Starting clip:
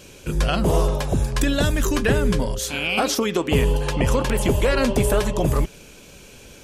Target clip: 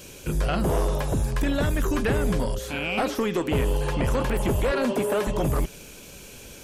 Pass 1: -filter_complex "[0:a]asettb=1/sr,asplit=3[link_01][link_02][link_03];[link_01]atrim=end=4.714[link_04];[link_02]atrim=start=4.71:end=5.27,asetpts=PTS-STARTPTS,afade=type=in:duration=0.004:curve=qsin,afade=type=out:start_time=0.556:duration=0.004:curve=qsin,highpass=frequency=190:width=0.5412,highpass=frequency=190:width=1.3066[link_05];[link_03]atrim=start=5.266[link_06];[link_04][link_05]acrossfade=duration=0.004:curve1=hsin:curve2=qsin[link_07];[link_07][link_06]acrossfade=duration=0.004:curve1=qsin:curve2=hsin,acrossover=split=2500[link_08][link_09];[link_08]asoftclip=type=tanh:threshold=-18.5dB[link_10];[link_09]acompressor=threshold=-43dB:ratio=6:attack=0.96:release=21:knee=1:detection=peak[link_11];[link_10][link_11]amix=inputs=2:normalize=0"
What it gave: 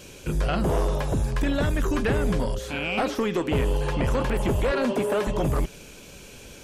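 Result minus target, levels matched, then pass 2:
8,000 Hz band −3.0 dB
-filter_complex "[0:a]asettb=1/sr,asplit=3[link_01][link_02][link_03];[link_01]atrim=end=4.714[link_04];[link_02]atrim=start=4.71:end=5.27,asetpts=PTS-STARTPTS,afade=type=in:duration=0.004:curve=qsin,afade=type=out:start_time=0.556:duration=0.004:curve=qsin,highpass=frequency=190:width=0.5412,highpass=frequency=190:width=1.3066[link_05];[link_03]atrim=start=5.266[link_06];[link_04][link_05]acrossfade=duration=0.004:curve1=hsin:curve2=qsin[link_07];[link_07][link_06]acrossfade=duration=0.004:curve1=qsin:curve2=hsin,acrossover=split=2500[link_08][link_09];[link_08]asoftclip=type=tanh:threshold=-18.5dB[link_10];[link_09]acompressor=threshold=-43dB:ratio=6:attack=0.96:release=21:knee=1:detection=peak,highshelf=frequency=11000:gain=11[link_11];[link_10][link_11]amix=inputs=2:normalize=0"

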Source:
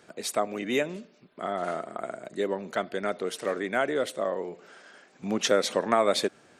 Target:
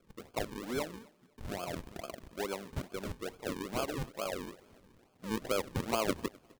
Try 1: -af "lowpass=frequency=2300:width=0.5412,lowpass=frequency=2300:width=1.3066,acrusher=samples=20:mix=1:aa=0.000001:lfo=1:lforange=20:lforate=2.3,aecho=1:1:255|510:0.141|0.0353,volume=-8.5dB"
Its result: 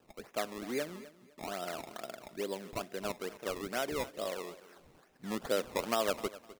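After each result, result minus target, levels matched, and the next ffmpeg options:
sample-and-hold swept by an LFO: distortion −12 dB; echo-to-direct +8 dB
-af "lowpass=frequency=2300:width=0.5412,lowpass=frequency=2300:width=1.3066,acrusher=samples=45:mix=1:aa=0.000001:lfo=1:lforange=45:lforate=2.3,aecho=1:1:255|510:0.141|0.0353,volume=-8.5dB"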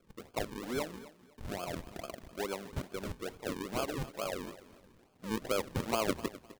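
echo-to-direct +8 dB
-af "lowpass=frequency=2300:width=0.5412,lowpass=frequency=2300:width=1.3066,acrusher=samples=45:mix=1:aa=0.000001:lfo=1:lforange=45:lforate=2.3,aecho=1:1:255|510:0.0562|0.0141,volume=-8.5dB"

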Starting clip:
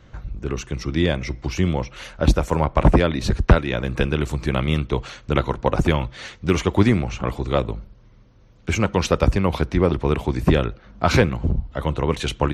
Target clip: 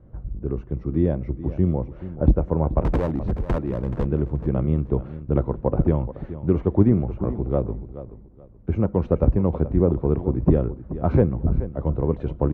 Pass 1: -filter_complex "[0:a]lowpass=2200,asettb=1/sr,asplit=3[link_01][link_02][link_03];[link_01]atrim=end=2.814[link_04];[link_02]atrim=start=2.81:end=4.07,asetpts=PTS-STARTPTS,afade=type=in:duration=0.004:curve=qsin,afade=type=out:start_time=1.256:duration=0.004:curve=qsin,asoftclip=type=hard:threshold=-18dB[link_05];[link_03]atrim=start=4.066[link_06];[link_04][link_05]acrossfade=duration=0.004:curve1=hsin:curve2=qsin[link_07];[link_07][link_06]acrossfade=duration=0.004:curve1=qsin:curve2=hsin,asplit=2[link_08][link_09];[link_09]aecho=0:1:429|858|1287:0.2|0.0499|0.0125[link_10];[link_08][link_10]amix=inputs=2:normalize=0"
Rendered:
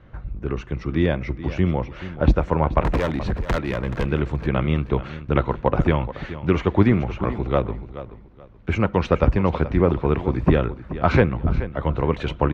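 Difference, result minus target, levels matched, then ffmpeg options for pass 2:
2,000 Hz band +15.5 dB
-filter_complex "[0:a]lowpass=570,asettb=1/sr,asplit=3[link_01][link_02][link_03];[link_01]atrim=end=2.814[link_04];[link_02]atrim=start=2.81:end=4.07,asetpts=PTS-STARTPTS,afade=type=in:duration=0.004:curve=qsin,afade=type=out:start_time=1.256:duration=0.004:curve=qsin,asoftclip=type=hard:threshold=-18dB[link_05];[link_03]atrim=start=4.066[link_06];[link_04][link_05]acrossfade=duration=0.004:curve1=hsin:curve2=qsin[link_07];[link_07][link_06]acrossfade=duration=0.004:curve1=qsin:curve2=hsin,asplit=2[link_08][link_09];[link_09]aecho=0:1:429|858|1287:0.2|0.0499|0.0125[link_10];[link_08][link_10]amix=inputs=2:normalize=0"

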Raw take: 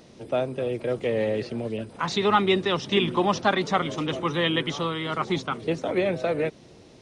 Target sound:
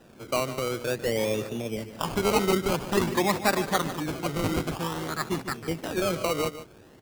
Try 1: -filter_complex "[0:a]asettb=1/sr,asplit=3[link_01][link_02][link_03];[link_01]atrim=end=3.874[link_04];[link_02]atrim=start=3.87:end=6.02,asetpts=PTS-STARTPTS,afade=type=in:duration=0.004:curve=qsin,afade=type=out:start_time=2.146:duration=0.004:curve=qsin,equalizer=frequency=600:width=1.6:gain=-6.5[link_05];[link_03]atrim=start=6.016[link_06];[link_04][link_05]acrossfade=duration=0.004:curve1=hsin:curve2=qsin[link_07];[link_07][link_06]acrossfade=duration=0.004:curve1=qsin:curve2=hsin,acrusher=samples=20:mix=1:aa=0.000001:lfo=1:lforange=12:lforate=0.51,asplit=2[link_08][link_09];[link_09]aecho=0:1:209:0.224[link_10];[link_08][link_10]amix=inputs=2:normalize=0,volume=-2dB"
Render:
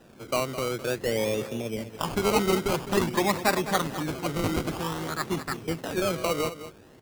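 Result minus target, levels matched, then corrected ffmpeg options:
echo 61 ms late
-filter_complex "[0:a]asettb=1/sr,asplit=3[link_01][link_02][link_03];[link_01]atrim=end=3.874[link_04];[link_02]atrim=start=3.87:end=6.02,asetpts=PTS-STARTPTS,afade=type=in:duration=0.004:curve=qsin,afade=type=out:start_time=2.146:duration=0.004:curve=qsin,equalizer=frequency=600:width=1.6:gain=-6.5[link_05];[link_03]atrim=start=6.016[link_06];[link_04][link_05]acrossfade=duration=0.004:curve1=hsin:curve2=qsin[link_07];[link_07][link_06]acrossfade=duration=0.004:curve1=qsin:curve2=hsin,acrusher=samples=20:mix=1:aa=0.000001:lfo=1:lforange=12:lforate=0.51,asplit=2[link_08][link_09];[link_09]aecho=0:1:148:0.224[link_10];[link_08][link_10]amix=inputs=2:normalize=0,volume=-2dB"

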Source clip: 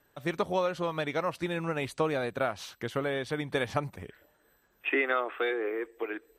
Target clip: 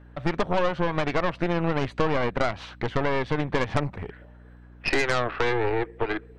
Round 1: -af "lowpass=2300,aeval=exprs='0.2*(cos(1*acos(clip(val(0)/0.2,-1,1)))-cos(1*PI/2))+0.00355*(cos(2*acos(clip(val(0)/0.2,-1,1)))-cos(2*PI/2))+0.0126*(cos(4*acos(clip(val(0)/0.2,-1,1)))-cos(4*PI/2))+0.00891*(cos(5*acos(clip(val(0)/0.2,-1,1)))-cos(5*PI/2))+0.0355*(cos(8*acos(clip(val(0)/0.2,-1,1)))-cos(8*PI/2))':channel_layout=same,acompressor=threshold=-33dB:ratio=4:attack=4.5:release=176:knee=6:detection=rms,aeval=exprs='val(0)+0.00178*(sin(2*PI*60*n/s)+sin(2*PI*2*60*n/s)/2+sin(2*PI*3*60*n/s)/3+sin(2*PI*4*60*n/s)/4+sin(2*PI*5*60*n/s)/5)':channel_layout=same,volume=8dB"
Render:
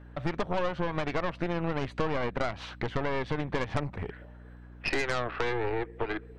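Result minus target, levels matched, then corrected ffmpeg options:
downward compressor: peak gain reduction +6 dB
-af "lowpass=2300,aeval=exprs='0.2*(cos(1*acos(clip(val(0)/0.2,-1,1)))-cos(1*PI/2))+0.00355*(cos(2*acos(clip(val(0)/0.2,-1,1)))-cos(2*PI/2))+0.0126*(cos(4*acos(clip(val(0)/0.2,-1,1)))-cos(4*PI/2))+0.00891*(cos(5*acos(clip(val(0)/0.2,-1,1)))-cos(5*PI/2))+0.0355*(cos(8*acos(clip(val(0)/0.2,-1,1)))-cos(8*PI/2))':channel_layout=same,acompressor=threshold=-25dB:ratio=4:attack=4.5:release=176:knee=6:detection=rms,aeval=exprs='val(0)+0.00178*(sin(2*PI*60*n/s)+sin(2*PI*2*60*n/s)/2+sin(2*PI*3*60*n/s)/3+sin(2*PI*4*60*n/s)/4+sin(2*PI*5*60*n/s)/5)':channel_layout=same,volume=8dB"

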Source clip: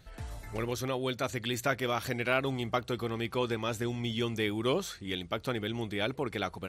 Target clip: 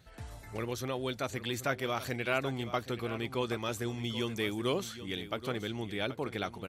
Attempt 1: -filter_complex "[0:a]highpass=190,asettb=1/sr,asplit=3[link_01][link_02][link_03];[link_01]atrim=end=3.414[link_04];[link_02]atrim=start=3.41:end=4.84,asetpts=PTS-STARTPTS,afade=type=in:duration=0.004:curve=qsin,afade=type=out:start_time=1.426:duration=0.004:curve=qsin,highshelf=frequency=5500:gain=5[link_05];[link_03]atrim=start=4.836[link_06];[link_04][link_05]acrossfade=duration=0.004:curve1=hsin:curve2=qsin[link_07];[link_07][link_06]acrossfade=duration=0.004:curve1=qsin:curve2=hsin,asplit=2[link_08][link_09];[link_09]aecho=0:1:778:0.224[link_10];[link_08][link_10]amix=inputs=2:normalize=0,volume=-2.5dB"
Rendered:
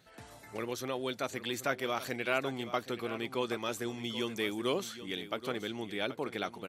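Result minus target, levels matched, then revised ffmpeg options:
125 Hz band −7.5 dB
-filter_complex "[0:a]highpass=56,asettb=1/sr,asplit=3[link_01][link_02][link_03];[link_01]atrim=end=3.414[link_04];[link_02]atrim=start=3.41:end=4.84,asetpts=PTS-STARTPTS,afade=type=in:duration=0.004:curve=qsin,afade=type=out:start_time=1.426:duration=0.004:curve=qsin,highshelf=frequency=5500:gain=5[link_05];[link_03]atrim=start=4.836[link_06];[link_04][link_05]acrossfade=duration=0.004:curve1=hsin:curve2=qsin[link_07];[link_07][link_06]acrossfade=duration=0.004:curve1=qsin:curve2=hsin,asplit=2[link_08][link_09];[link_09]aecho=0:1:778:0.224[link_10];[link_08][link_10]amix=inputs=2:normalize=0,volume=-2.5dB"

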